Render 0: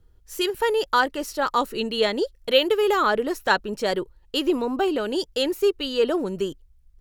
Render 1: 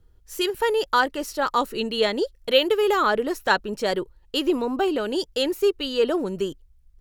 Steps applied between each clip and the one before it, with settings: nothing audible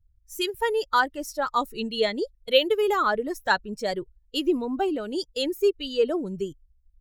per-bin expansion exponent 1.5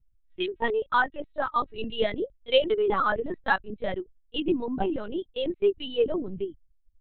LPC vocoder at 8 kHz pitch kept; gain -1.5 dB

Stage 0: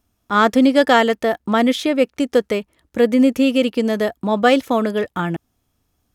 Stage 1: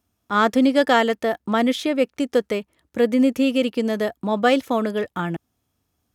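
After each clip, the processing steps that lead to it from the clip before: HPF 60 Hz; gain -3.5 dB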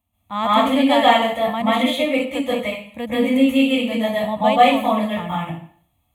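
fixed phaser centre 1500 Hz, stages 6; plate-style reverb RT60 0.53 s, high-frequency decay 0.95×, pre-delay 0.12 s, DRR -8.5 dB; gain -1.5 dB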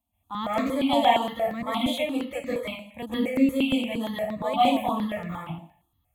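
dynamic EQ 1500 Hz, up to -6 dB, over -31 dBFS, Q 1.4; step phaser 8.6 Hz 430–3200 Hz; gain -3.5 dB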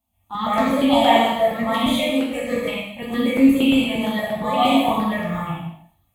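non-linear reverb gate 0.27 s falling, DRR -4 dB; gain +2 dB

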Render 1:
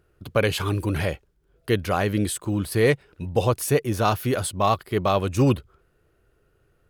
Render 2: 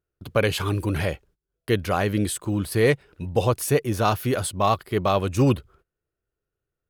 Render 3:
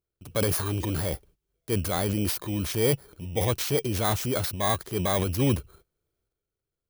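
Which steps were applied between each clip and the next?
gate -52 dBFS, range -21 dB
FFT order left unsorted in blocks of 16 samples; transient shaper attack -3 dB, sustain +8 dB; gain -4 dB

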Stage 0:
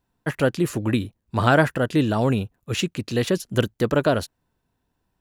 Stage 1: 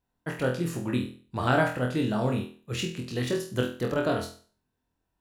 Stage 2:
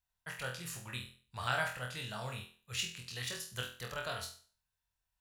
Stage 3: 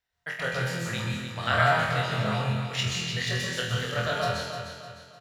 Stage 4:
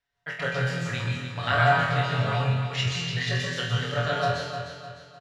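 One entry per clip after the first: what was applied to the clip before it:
flutter echo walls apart 4.1 m, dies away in 0.41 s; gain -8.5 dB
passive tone stack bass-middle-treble 10-0-10
feedback echo 0.303 s, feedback 41%, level -8.5 dB; reverb RT60 0.85 s, pre-delay 0.124 s, DRR -1 dB; gain +2 dB
air absorption 67 m; comb 7.1 ms

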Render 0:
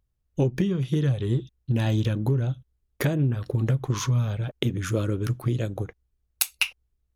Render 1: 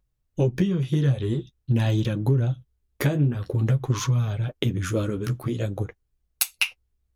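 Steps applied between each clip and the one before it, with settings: flange 0.48 Hz, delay 5.4 ms, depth 9.4 ms, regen -29%; gain +4.5 dB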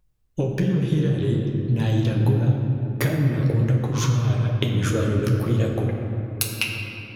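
compressor, threshold -24 dBFS, peak gain reduction 8 dB; shoebox room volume 180 m³, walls hard, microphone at 0.43 m; gain +3.5 dB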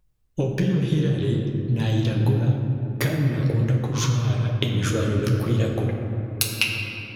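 dynamic EQ 4200 Hz, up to +4 dB, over -44 dBFS, Q 0.74; in parallel at +1 dB: vocal rider within 3 dB 2 s; on the sum: gain -7.5 dB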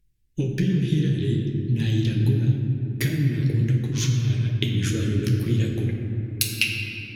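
band shelf 810 Hz -15.5 dB; Vorbis 96 kbps 48000 Hz

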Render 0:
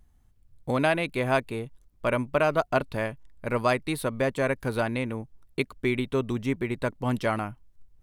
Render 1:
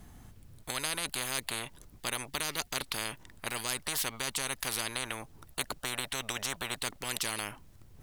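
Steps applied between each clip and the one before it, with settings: spectral compressor 10:1; gain -2 dB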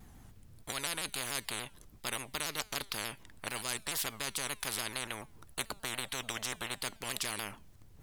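resonator 210 Hz, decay 0.56 s, harmonics all, mix 40%; shaped vibrato saw down 6.9 Hz, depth 160 cents; gain +1.5 dB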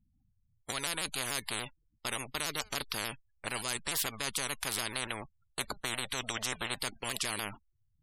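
spectral gate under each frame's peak -15 dB strong; gate -47 dBFS, range -21 dB; in parallel at -2 dB: limiter -25.5 dBFS, peak gain reduction 10 dB; on the sum: gain -1.5 dB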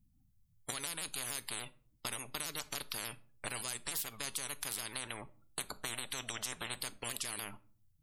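high shelf 6900 Hz +9 dB; compressor 3:1, threshold -41 dBFS, peak gain reduction 14 dB; shoebox room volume 410 m³, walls furnished, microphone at 0.39 m; gain +1.5 dB

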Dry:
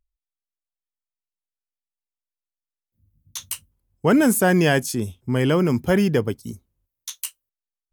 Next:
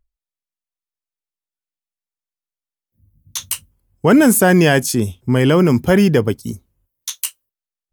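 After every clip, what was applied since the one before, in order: spectral noise reduction 9 dB; in parallel at 0 dB: limiter -13.5 dBFS, peak gain reduction 7.5 dB; on the sum: gain +1.5 dB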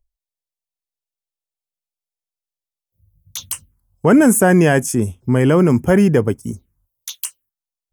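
envelope phaser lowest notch 250 Hz, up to 4100 Hz, full sweep at -19.5 dBFS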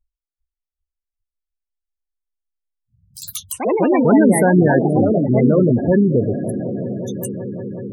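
swelling echo 0.186 s, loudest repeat 5, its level -17.5 dB; echoes that change speed 0.398 s, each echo +3 st, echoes 3; spectral gate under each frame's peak -15 dB strong; gain -2 dB

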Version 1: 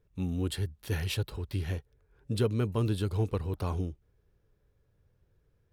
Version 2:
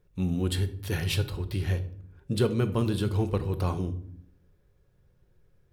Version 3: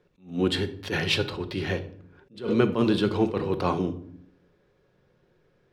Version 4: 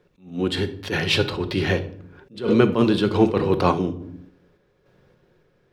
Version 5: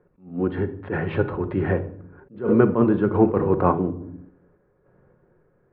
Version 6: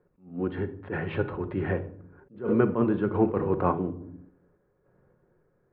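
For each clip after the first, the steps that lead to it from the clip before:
shoebox room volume 1000 m³, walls furnished, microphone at 0.96 m; gain +3.5 dB
three-band isolator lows -20 dB, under 170 Hz, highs -20 dB, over 5600 Hz; attack slew limiter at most 170 dB/s; gain +8.5 dB
random-step tremolo; gain +7.5 dB
LPF 1600 Hz 24 dB/oct
dynamic EQ 2900 Hz, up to +4 dB, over -43 dBFS, Q 0.98; gain -6 dB

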